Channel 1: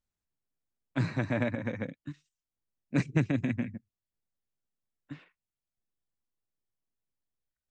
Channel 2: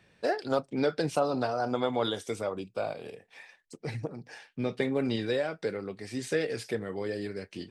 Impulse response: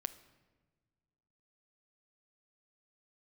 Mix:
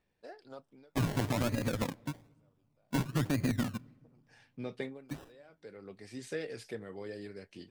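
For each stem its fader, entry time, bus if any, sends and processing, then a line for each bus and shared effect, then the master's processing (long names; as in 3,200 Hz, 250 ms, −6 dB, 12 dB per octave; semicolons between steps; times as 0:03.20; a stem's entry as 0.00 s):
0.0 dB, 0.00 s, send −9 dB, high-shelf EQ 2,400 Hz +9 dB; sample-and-hold swept by an LFO 28×, swing 60% 1.1 Hz
0:03.88 −20.5 dB → 0:04.55 −9 dB, 0.00 s, no send, automatic ducking −23 dB, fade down 0.25 s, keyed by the first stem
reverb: on, pre-delay 7 ms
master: brickwall limiter −22.5 dBFS, peak gain reduction 10 dB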